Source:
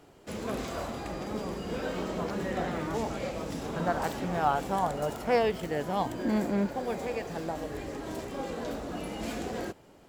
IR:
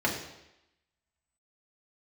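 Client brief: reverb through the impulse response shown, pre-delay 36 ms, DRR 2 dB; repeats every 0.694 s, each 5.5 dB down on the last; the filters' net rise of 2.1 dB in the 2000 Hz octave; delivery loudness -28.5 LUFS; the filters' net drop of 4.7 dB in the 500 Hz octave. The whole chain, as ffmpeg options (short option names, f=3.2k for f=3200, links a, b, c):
-filter_complex "[0:a]equalizer=f=500:t=o:g=-6,equalizer=f=2k:t=o:g=3,aecho=1:1:694|1388|2082|2776|3470|4164|4858:0.531|0.281|0.149|0.079|0.0419|0.0222|0.0118,asplit=2[a][b];[1:a]atrim=start_sample=2205,adelay=36[c];[b][c]afir=irnorm=-1:irlink=0,volume=-13dB[d];[a][d]amix=inputs=2:normalize=0,volume=1dB"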